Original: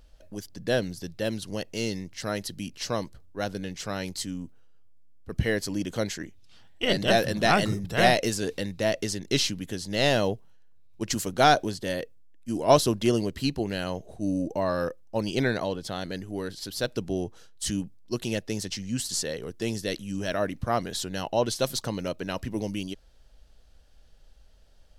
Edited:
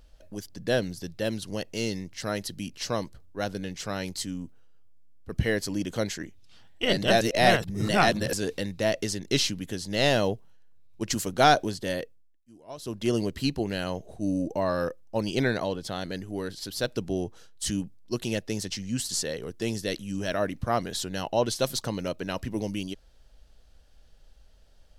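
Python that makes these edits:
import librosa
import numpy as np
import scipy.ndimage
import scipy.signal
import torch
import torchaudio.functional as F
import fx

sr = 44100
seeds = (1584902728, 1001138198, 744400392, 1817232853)

y = fx.edit(x, sr, fx.reverse_span(start_s=7.21, length_s=1.12),
    fx.fade_down_up(start_s=11.97, length_s=1.25, db=-23.5, fade_s=0.45), tone=tone)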